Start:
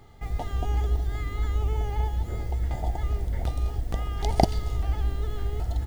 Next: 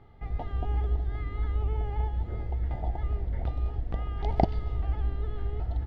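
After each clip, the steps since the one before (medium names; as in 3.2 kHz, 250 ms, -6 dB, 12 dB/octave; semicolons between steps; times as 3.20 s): distance through air 340 m; trim -2.5 dB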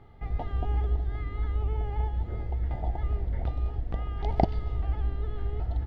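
gain riding within 3 dB 2 s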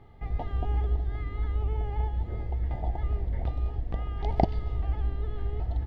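band-stop 1.4 kHz, Q 8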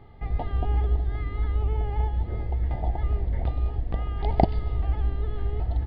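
resampled via 11.025 kHz; trim +3.5 dB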